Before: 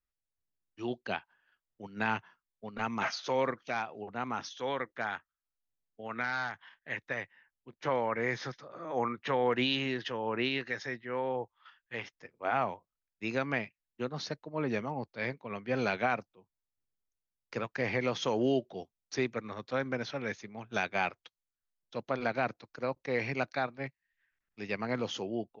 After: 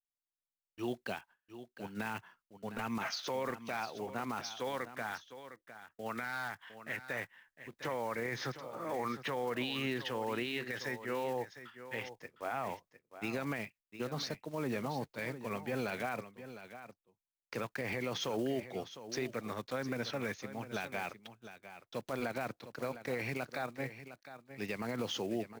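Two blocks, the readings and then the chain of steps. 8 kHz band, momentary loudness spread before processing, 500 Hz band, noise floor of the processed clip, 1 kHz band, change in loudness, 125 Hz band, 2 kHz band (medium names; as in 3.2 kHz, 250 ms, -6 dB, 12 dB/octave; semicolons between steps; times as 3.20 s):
no reading, 12 LU, -4.5 dB, under -85 dBFS, -5.5 dB, -4.5 dB, -3.0 dB, -5.0 dB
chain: block-companded coder 5-bit; gate with hold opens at -55 dBFS; peak limiter -28.5 dBFS, peak gain reduction 11 dB; on a send: delay 707 ms -12.5 dB; on the sum: trim +1 dB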